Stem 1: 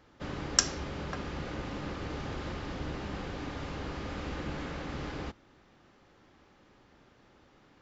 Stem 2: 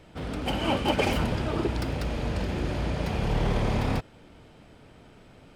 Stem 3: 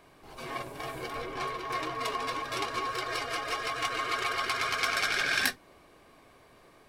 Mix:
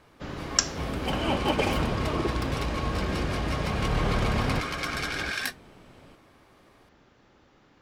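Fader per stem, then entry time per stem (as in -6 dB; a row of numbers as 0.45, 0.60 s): +1.5, -1.0, -3.5 dB; 0.00, 0.60, 0.00 s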